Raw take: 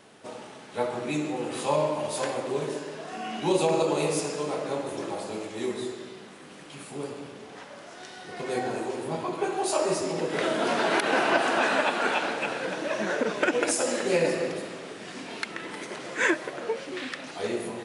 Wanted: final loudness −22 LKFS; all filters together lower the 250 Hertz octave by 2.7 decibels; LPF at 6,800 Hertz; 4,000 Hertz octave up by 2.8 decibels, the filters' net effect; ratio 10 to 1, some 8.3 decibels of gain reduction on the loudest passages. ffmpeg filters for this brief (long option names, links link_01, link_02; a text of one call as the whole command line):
ffmpeg -i in.wav -af "lowpass=6800,equalizer=frequency=250:width_type=o:gain=-4,equalizer=frequency=4000:width_type=o:gain=4,acompressor=threshold=-27dB:ratio=10,volume=11dB" out.wav